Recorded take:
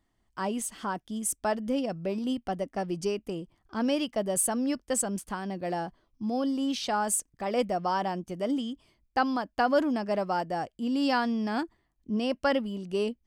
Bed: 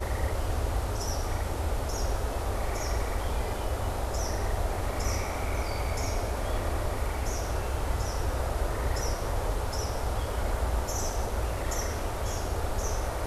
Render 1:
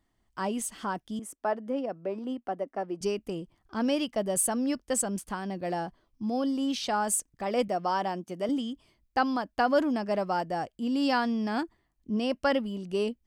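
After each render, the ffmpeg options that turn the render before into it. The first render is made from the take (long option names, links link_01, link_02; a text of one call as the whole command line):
ffmpeg -i in.wav -filter_complex "[0:a]asettb=1/sr,asplit=3[link_01][link_02][link_03];[link_01]atrim=end=1.194[link_04];[link_02]atrim=start=1.19:end=3.01,asetpts=PTS-STARTPTS,afade=type=in:duration=0.004:curve=qsin,afade=type=out:start_time=1.816:duration=0.004:curve=qsin,acrossover=split=240 2000:gain=0.112 1 0.2[link_05][link_06][link_07];[link_05][link_06][link_07]amix=inputs=3:normalize=0[link_08];[link_03]atrim=start=3.006[link_09];[link_04][link_08]acrossfade=duration=0.004:curve1=hsin:curve2=qsin[link_10];[link_10][link_09]acrossfade=duration=0.004:curve1=qsin:curve2=hsin,asettb=1/sr,asplit=3[link_11][link_12][link_13];[link_11]atrim=end=7.684[link_14];[link_12]atrim=start=7.68:end=8.49,asetpts=PTS-STARTPTS,afade=type=in:duration=0.004:curve=qsin,afade=type=out:start_time=0.806:duration=0.004:curve=qsin,highpass=180[link_15];[link_13]atrim=start=8.486[link_16];[link_14][link_15]acrossfade=duration=0.004:curve1=hsin:curve2=qsin[link_17];[link_17][link_16]acrossfade=duration=0.004:curve1=qsin:curve2=hsin" out.wav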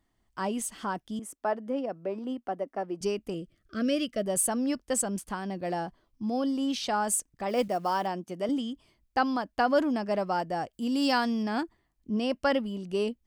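ffmpeg -i in.wav -filter_complex "[0:a]asettb=1/sr,asplit=3[link_01][link_02][link_03];[link_01]atrim=end=3.344[link_04];[link_02]atrim=start=3.34:end=4.26,asetpts=PTS-STARTPTS,afade=type=in:duration=0.004:curve=qsin,afade=type=out:start_time=0.916:duration=0.004:curve=qsin,asuperstop=centerf=890:order=8:qfactor=1.7[link_05];[link_03]atrim=start=4.256[link_06];[link_04][link_05]acrossfade=duration=0.004:curve1=hsin:curve2=qsin[link_07];[link_07][link_06]acrossfade=duration=0.004:curve1=qsin:curve2=hsin,asplit=3[link_08][link_09][link_10];[link_08]afade=type=out:start_time=7.48:duration=0.02[link_11];[link_09]acrusher=bits=7:mode=log:mix=0:aa=0.000001,afade=type=in:start_time=7.48:duration=0.02,afade=type=out:start_time=8.06:duration=0.02[link_12];[link_10]afade=type=in:start_time=8.06:duration=0.02[link_13];[link_11][link_12][link_13]amix=inputs=3:normalize=0,asettb=1/sr,asplit=3[link_14][link_15][link_16];[link_14]atrim=end=10.734[link_17];[link_15]atrim=start=10.73:end=11.43,asetpts=PTS-STARTPTS,afade=type=in:duration=0.004:curve=qsin,afade=type=out:start_time=0.696:duration=0.004:curve=qsin,highshelf=frequency=5500:gain=10.5[link_18];[link_16]atrim=start=11.426[link_19];[link_17][link_18]acrossfade=duration=0.004:curve1=hsin:curve2=qsin[link_20];[link_20][link_19]acrossfade=duration=0.004:curve1=qsin:curve2=hsin" out.wav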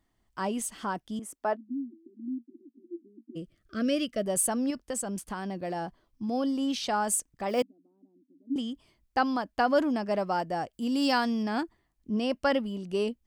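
ffmpeg -i in.wav -filter_complex "[0:a]asplit=3[link_01][link_02][link_03];[link_01]afade=type=out:start_time=1.55:duration=0.02[link_04];[link_02]asuperpass=centerf=280:order=12:qfactor=2.4,afade=type=in:start_time=1.55:duration=0.02,afade=type=out:start_time=3.35:duration=0.02[link_05];[link_03]afade=type=in:start_time=3.35:duration=0.02[link_06];[link_04][link_05][link_06]amix=inputs=3:normalize=0,asettb=1/sr,asplit=3[link_07][link_08][link_09];[link_07]atrim=end=4.704[link_10];[link_08]atrim=start=4.7:end=6.29,asetpts=PTS-STARTPTS,afade=type=in:duration=0.004:curve=qsin,afade=type=out:start_time=1.586:duration=0.004:curve=qsin,acompressor=threshold=-29dB:ratio=4:attack=3.2:release=140:knee=1:detection=peak[link_11];[link_09]atrim=start=6.286[link_12];[link_10][link_11]acrossfade=duration=0.004:curve1=hsin:curve2=qsin[link_13];[link_13][link_12]acrossfade=duration=0.004:curve1=qsin:curve2=hsin,asettb=1/sr,asplit=3[link_14][link_15][link_16];[link_14]atrim=end=7.624[link_17];[link_15]atrim=start=7.62:end=8.56,asetpts=PTS-STARTPTS,afade=type=in:duration=0.004:curve=qsin,afade=type=out:start_time=0.936:duration=0.004:curve=qsin,asuperpass=centerf=270:order=4:qfactor=7.6[link_18];[link_16]atrim=start=8.556[link_19];[link_17][link_18]acrossfade=duration=0.004:curve1=hsin:curve2=qsin[link_20];[link_20][link_19]acrossfade=duration=0.004:curve1=qsin:curve2=hsin" out.wav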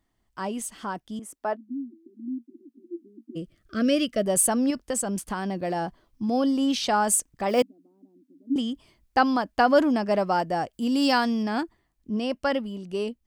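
ffmpeg -i in.wav -af "dynaudnorm=framelen=490:gausssize=11:maxgain=5.5dB" out.wav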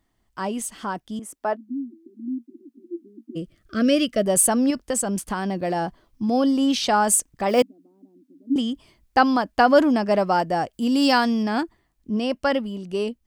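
ffmpeg -i in.wav -af "volume=3.5dB" out.wav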